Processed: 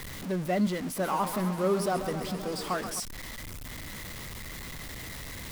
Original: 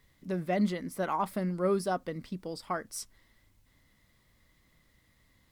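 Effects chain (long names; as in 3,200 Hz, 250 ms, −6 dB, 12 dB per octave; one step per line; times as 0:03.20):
converter with a step at zero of −34.5 dBFS
0:00.86–0:03.00: feedback echo with a swinging delay time 131 ms, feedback 78%, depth 104 cents, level −10.5 dB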